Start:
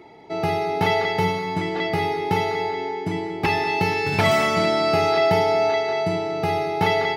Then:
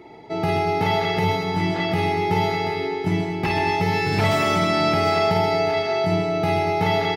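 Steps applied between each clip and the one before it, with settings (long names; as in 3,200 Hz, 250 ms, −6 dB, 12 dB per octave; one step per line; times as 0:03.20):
low-shelf EQ 250 Hz +4.5 dB
brickwall limiter −13 dBFS, peak gain reduction 7 dB
multi-tap delay 51/129/236/733 ms −5/−7.5/−12/−9.5 dB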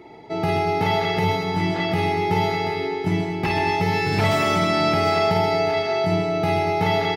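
no processing that can be heard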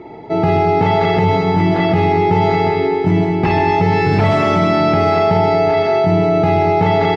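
in parallel at −2 dB: compressor whose output falls as the input rises −23 dBFS
on the sum: low-pass filter 6,600 Hz 12 dB per octave
high-shelf EQ 2,200 Hz −12 dB
level +4.5 dB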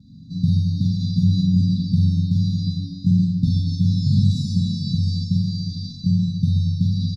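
pitch vibrato 0.4 Hz 14 cents
linear-phase brick-wall band-stop 260–3,500 Hz
double-tracking delay 43 ms −4 dB
level −1.5 dB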